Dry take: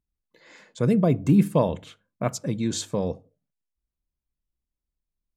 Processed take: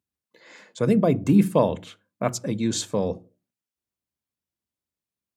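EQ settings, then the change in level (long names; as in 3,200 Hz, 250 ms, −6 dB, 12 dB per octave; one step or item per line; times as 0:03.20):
high-pass filter 92 Hz 24 dB per octave
parametric band 150 Hz −8.5 dB 0.24 octaves
mains-hum notches 60/120/180/240/300/360 Hz
+2.5 dB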